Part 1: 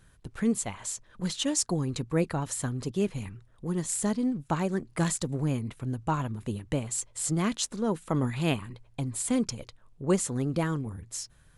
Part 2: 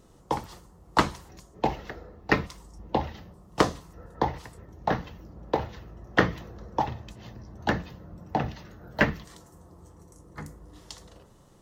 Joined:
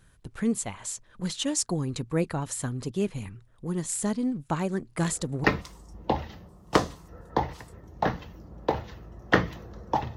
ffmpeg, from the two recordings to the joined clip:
ffmpeg -i cue0.wav -i cue1.wav -filter_complex "[1:a]asplit=2[link_01][link_02];[0:a]apad=whole_dur=10.16,atrim=end=10.16,atrim=end=5.442[link_03];[link_02]atrim=start=2.288:end=7.01[link_04];[link_01]atrim=start=1.87:end=2.29,asetpts=PTS-STARTPTS,volume=-7dB,afade=type=in:duration=0.004:curve=hsin,afade=type=out:start_time=0.416:duration=0.004:curve=hsin,adelay=5020[link_05];[link_03][link_04]acrossfade=duration=0.004:curve1=hsin:curve2=hsin[link_06];[link_06][link_05]amix=inputs=2:normalize=0" out.wav

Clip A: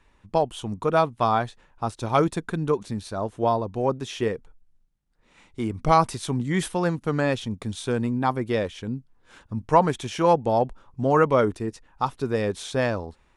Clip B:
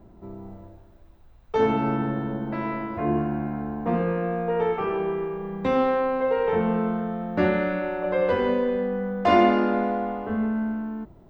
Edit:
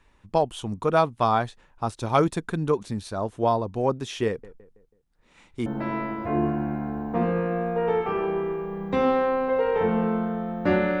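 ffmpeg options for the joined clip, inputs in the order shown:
ffmpeg -i cue0.wav -i cue1.wav -filter_complex "[0:a]asettb=1/sr,asplit=3[link_01][link_02][link_03];[link_01]atrim=end=4.274[link_04];[link_02]atrim=start=4.27:end=5.66,asetpts=PTS-STARTPTS,afade=type=in:duration=0.004:curve=qsin,afade=type=out:start_time=1.386:duration=0.004:curve=qsin,asplit=2[link_05][link_06];[link_06]adelay=163,lowpass=frequency=2000:poles=1,volume=-17.5dB,asplit=2[link_07][link_08];[link_08]adelay=163,lowpass=frequency=2000:poles=1,volume=0.46,asplit=2[link_09][link_10];[link_10]adelay=163,lowpass=frequency=2000:poles=1,volume=0.46,asplit=2[link_11][link_12];[link_12]adelay=163,lowpass=frequency=2000:poles=1,volume=0.46[link_13];[link_05][link_07][link_09][link_11][link_13]amix=inputs=5:normalize=0,atrim=end_sample=61299[link_14];[link_03]atrim=start=5.656[link_15];[link_04][link_14]acrossfade=duration=0.004:curve1=hsin:curve2=qsin[link_16];[link_16][link_15]acrossfade=duration=0.004:curve1=qsin:curve2=hsin,apad=whole_dur=11,atrim=end=11,atrim=end=5.662[link_17];[1:a]atrim=start=2.378:end=7.72[link_18];[link_17][link_18]acrossfade=duration=0.004:curve1=hsin:curve2=hsin" out.wav

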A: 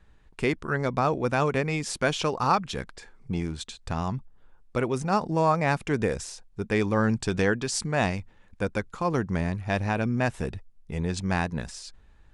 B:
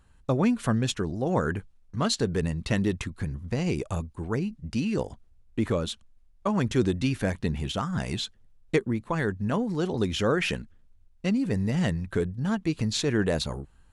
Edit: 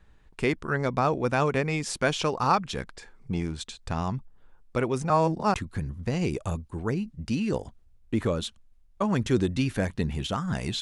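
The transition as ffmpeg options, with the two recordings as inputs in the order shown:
ffmpeg -i cue0.wav -i cue1.wav -filter_complex "[0:a]apad=whole_dur=10.81,atrim=end=10.81,asplit=2[link_01][link_02];[link_01]atrim=end=5.102[link_03];[link_02]atrim=start=5.098:end=5.542,asetpts=PTS-STARTPTS,areverse[link_04];[1:a]atrim=start=2.988:end=8.26[link_05];[link_03][link_04]acrossfade=duration=0.004:curve1=hsin:curve2=hsin[link_06];[link_06][link_05]acrossfade=duration=0.004:curve1=hsin:curve2=hsin" out.wav

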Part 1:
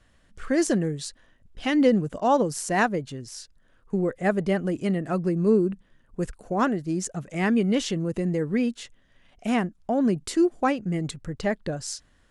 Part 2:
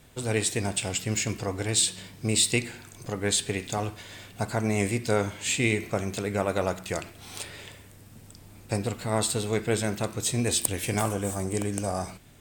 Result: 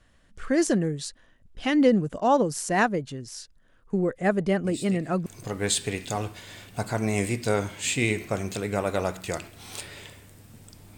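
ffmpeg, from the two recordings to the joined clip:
ffmpeg -i cue0.wav -i cue1.wav -filter_complex "[1:a]asplit=2[link_01][link_02];[0:a]apad=whole_dur=10.97,atrim=end=10.97,atrim=end=5.262[link_03];[link_02]atrim=start=2.878:end=8.59[link_04];[link_01]atrim=start=2.26:end=2.88,asetpts=PTS-STARTPTS,volume=-17dB,afade=type=in:duration=0.004:curve=hsin,afade=type=out:start_time=0.616:duration=0.004:curve=hsin,adelay=4640[link_05];[link_03][link_04]acrossfade=duration=0.004:curve1=hsin:curve2=hsin[link_06];[link_06][link_05]amix=inputs=2:normalize=0" out.wav

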